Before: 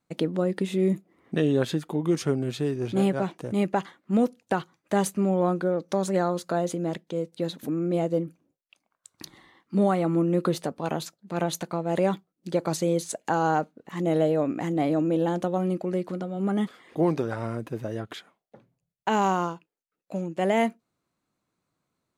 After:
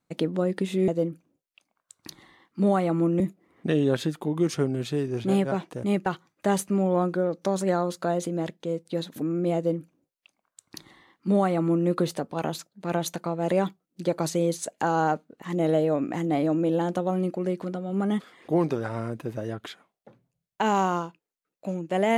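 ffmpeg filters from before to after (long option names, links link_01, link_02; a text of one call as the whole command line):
ffmpeg -i in.wav -filter_complex "[0:a]asplit=4[link_01][link_02][link_03][link_04];[link_01]atrim=end=0.882[link_05];[link_02]atrim=start=8.028:end=10.352[link_06];[link_03]atrim=start=0.878:end=3.742[link_07];[link_04]atrim=start=4.528[link_08];[link_05][link_06]acrossfade=duration=0.004:curve1=hsin:curve2=hsin[link_09];[link_09][link_07]acrossfade=duration=0.004:curve1=hsin:curve2=hsin[link_10];[link_10][link_08]acrossfade=duration=0.004:curve1=hsin:curve2=hsin" out.wav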